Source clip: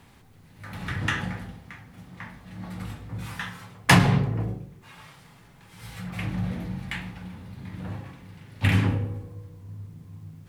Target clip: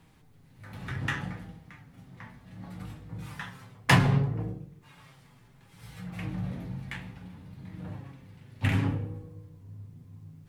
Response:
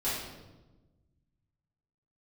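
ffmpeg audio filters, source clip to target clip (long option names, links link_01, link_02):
-filter_complex "[0:a]flanger=delay=6.3:depth=1.7:regen=54:speed=0.65:shape=sinusoidal,asplit=2[link_01][link_02];[link_02]adynamicsmooth=sensitivity=5.5:basefreq=600,volume=-6dB[link_03];[link_01][link_03]amix=inputs=2:normalize=0,volume=-3.5dB"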